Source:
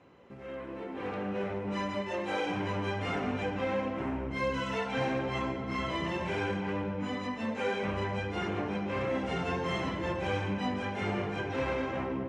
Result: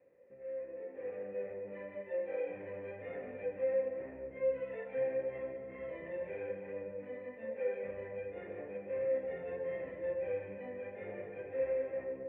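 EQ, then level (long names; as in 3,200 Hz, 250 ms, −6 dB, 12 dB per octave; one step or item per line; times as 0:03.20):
formant resonators in series e
parametric band 500 Hz +2.5 dB 0.25 octaves
0.0 dB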